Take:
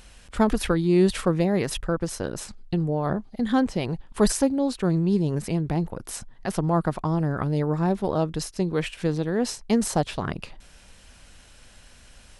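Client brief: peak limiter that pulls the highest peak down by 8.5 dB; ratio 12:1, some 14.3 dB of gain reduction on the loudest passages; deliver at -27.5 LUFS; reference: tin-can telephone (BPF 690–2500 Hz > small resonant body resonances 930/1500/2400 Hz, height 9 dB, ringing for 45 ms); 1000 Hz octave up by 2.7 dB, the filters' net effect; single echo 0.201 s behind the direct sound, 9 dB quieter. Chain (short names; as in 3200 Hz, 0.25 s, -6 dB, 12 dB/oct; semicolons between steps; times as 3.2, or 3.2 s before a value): bell 1000 Hz +5.5 dB; compressor 12:1, threshold -29 dBFS; limiter -25.5 dBFS; BPF 690–2500 Hz; echo 0.201 s -9 dB; small resonant body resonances 930/1500/2400 Hz, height 9 dB, ringing for 45 ms; gain +15 dB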